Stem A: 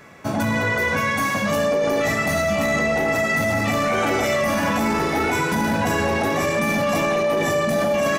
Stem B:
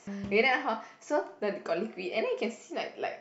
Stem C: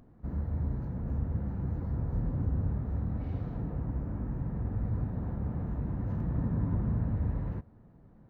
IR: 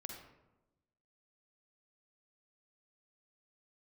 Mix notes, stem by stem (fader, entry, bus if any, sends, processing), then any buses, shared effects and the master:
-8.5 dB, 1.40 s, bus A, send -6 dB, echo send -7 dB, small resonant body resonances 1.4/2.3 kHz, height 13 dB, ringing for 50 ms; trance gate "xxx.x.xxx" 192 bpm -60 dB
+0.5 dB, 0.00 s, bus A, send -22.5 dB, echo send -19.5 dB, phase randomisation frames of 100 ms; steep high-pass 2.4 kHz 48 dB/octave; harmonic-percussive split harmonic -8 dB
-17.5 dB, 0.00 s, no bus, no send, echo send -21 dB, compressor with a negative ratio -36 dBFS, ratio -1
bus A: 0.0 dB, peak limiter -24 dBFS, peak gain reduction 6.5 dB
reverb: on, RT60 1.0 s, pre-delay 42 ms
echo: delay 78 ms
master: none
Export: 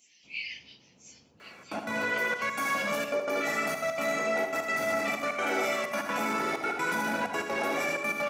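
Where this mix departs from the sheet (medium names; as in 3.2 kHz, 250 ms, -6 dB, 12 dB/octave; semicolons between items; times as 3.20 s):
stem C: missing compressor with a negative ratio -36 dBFS, ratio -1; master: extra high-pass 300 Hz 12 dB/octave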